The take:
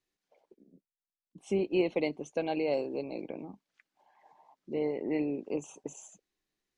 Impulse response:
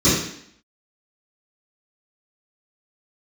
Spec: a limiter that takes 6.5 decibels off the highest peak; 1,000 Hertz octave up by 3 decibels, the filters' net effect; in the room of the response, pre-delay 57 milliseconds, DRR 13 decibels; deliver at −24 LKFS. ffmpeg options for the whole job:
-filter_complex "[0:a]equalizer=frequency=1000:width_type=o:gain=4.5,alimiter=limit=-22dB:level=0:latency=1,asplit=2[link_01][link_02];[1:a]atrim=start_sample=2205,adelay=57[link_03];[link_02][link_03]afir=irnorm=-1:irlink=0,volume=-33.5dB[link_04];[link_01][link_04]amix=inputs=2:normalize=0,volume=9dB"

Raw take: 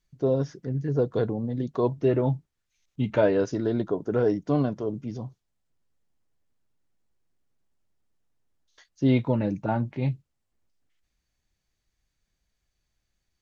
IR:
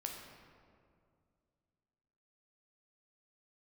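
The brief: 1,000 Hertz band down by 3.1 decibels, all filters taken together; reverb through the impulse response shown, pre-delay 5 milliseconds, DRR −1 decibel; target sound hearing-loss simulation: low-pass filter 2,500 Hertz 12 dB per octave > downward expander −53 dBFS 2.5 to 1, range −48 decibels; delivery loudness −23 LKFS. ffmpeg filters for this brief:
-filter_complex "[0:a]equalizer=frequency=1000:width_type=o:gain=-4,asplit=2[link_01][link_02];[1:a]atrim=start_sample=2205,adelay=5[link_03];[link_02][link_03]afir=irnorm=-1:irlink=0,volume=2dB[link_04];[link_01][link_04]amix=inputs=2:normalize=0,lowpass=2500,agate=range=-48dB:threshold=-53dB:ratio=2.5,volume=1dB"

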